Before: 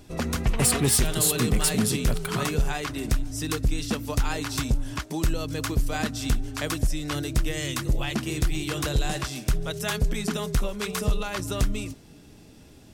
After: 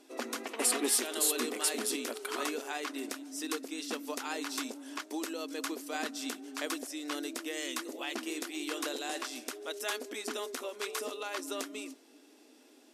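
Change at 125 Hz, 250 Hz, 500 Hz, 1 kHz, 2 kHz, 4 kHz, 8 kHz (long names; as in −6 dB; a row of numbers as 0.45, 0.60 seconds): below −40 dB, −9.5 dB, −6.0 dB, −6.0 dB, −6.0 dB, −6.0 dB, −6.0 dB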